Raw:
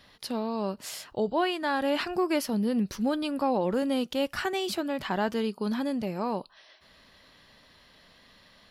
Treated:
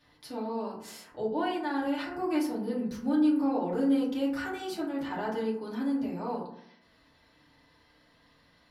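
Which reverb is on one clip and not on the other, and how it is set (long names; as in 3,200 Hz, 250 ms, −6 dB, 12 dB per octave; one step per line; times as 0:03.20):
feedback delay network reverb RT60 0.7 s, low-frequency decay 1.25×, high-frequency decay 0.35×, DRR −7 dB
level −13 dB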